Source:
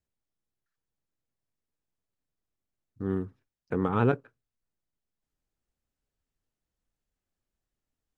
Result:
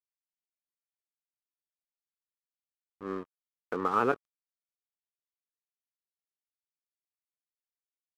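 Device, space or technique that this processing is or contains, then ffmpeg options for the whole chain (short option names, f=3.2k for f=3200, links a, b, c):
pocket radio on a weak battery: -af "highpass=340,lowpass=3k,aeval=exprs='sgn(val(0))*max(abs(val(0))-0.00631,0)':c=same,equalizer=f=1.2k:t=o:w=0.31:g=9"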